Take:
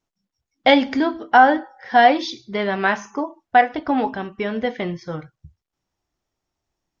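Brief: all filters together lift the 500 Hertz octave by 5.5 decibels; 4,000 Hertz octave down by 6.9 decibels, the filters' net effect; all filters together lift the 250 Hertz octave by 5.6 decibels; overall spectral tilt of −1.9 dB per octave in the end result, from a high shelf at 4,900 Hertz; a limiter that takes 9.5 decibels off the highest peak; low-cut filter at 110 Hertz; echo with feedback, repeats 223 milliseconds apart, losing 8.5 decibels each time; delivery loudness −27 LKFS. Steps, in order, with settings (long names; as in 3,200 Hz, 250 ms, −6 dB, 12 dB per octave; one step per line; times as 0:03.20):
high-pass filter 110 Hz
parametric band 250 Hz +5 dB
parametric band 500 Hz +6 dB
parametric band 4,000 Hz −7 dB
high-shelf EQ 4,900 Hz −6 dB
brickwall limiter −7 dBFS
repeating echo 223 ms, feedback 38%, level −8.5 dB
level −8 dB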